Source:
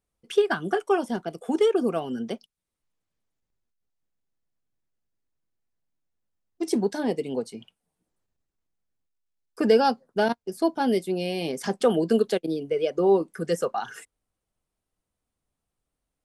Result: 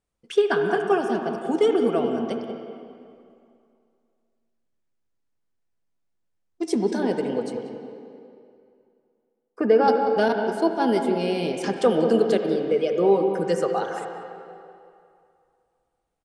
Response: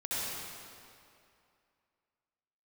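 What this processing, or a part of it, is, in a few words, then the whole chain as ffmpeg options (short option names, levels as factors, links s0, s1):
filtered reverb send: -filter_complex "[0:a]lowpass=f=9600:w=0.5412,lowpass=f=9600:w=1.3066,asettb=1/sr,asplit=3[s0][s1][s2];[s0]atrim=end=7.574[s3];[s1]atrim=start=7.57:end=9.88,asetpts=PTS-STARTPTS,afade=t=in:d=0.004:c=qsin,afade=t=out:st=2.306:d=0.004:c=qsin,acrossover=split=170 2300:gain=0.2 1 0.141[s4][s5][s6];[s4][s5][s6]amix=inputs=3:normalize=0[s7];[s2]atrim=start=9.876[s8];[s3][s7]acrossfade=d=0.004:c1=hsin:c2=qsin[s9];[s9][s8]acrossfade=d=0.004:c1=qsin:c2=hsin,asplit=2[s10][s11];[s11]adelay=187,lowpass=f=1200:p=1,volume=0.473,asplit=2[s12][s13];[s13]adelay=187,lowpass=f=1200:p=1,volume=0.4,asplit=2[s14][s15];[s15]adelay=187,lowpass=f=1200:p=1,volume=0.4,asplit=2[s16][s17];[s17]adelay=187,lowpass=f=1200:p=1,volume=0.4,asplit=2[s18][s19];[s19]adelay=187,lowpass=f=1200:p=1,volume=0.4[s20];[s10][s12][s14][s16][s18][s20]amix=inputs=6:normalize=0,asplit=2[s21][s22];[s22]highpass=f=290:p=1,lowpass=3000[s23];[1:a]atrim=start_sample=2205[s24];[s23][s24]afir=irnorm=-1:irlink=0,volume=0.355[s25];[s21][s25]amix=inputs=2:normalize=0"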